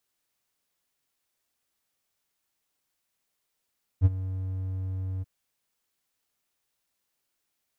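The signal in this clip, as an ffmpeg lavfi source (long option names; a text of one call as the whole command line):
ffmpeg -f lavfi -i "aevalsrc='0.282*(1-4*abs(mod(94*t+0.25,1)-0.5))':duration=1.234:sample_rate=44100,afade=type=in:duration=0.044,afade=type=out:start_time=0.044:duration=0.032:silence=0.158,afade=type=out:start_time=1.21:duration=0.024" out.wav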